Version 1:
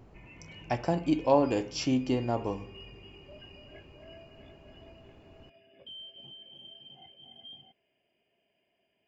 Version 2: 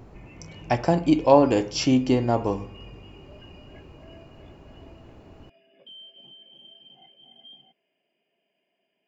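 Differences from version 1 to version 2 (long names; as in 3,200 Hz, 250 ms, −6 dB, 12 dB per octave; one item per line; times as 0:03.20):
speech +7.5 dB
background: add Butterworth high-pass 150 Hz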